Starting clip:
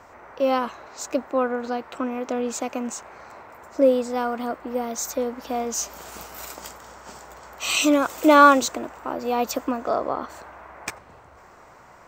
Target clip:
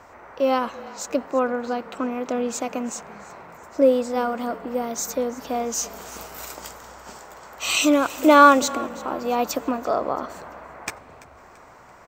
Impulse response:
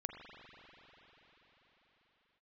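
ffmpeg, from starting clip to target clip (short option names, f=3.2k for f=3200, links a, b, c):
-filter_complex "[0:a]asettb=1/sr,asplit=3[a][b][c];[a]atrim=end=7.134[d];[b]atrim=start=7.13:end=7.58,asetpts=PTS-STARTPTS,afade=t=in:d=0.004:c=qsin,afade=t=out:st=0.446:d=0.004:c=qsin,highpass=f=120:p=1[e];[c]atrim=start=7.576[f];[d][e]acrossfade=d=0.004:c1=hsin:c2=qsin[g];[g][f]acrossfade=d=0.004:c1=qsin:c2=hsin,asplit=4[h][i][j][k];[i]adelay=337,afreqshift=-36,volume=-19.5dB[l];[j]adelay=674,afreqshift=-72,volume=-26.8dB[m];[k]adelay=1011,afreqshift=-108,volume=-34.2dB[n];[h][l][m][n]amix=inputs=4:normalize=0,asplit=2[o][p];[1:a]atrim=start_sample=2205[q];[p][q]afir=irnorm=-1:irlink=0,volume=-17dB[r];[o][r]amix=inputs=2:normalize=0"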